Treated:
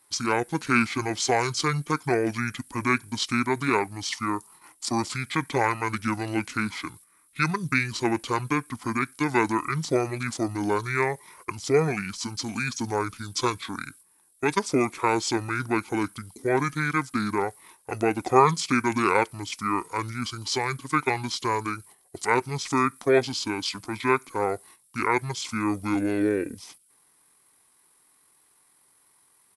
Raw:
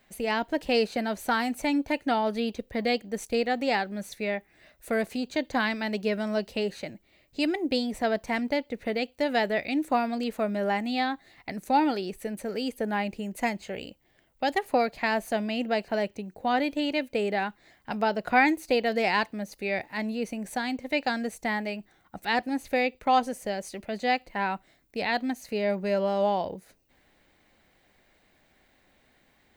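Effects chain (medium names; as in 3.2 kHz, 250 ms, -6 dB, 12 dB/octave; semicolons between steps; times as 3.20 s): RIAA curve recording; pitch shift -11.5 st; gate -52 dBFS, range -9 dB; trim +3 dB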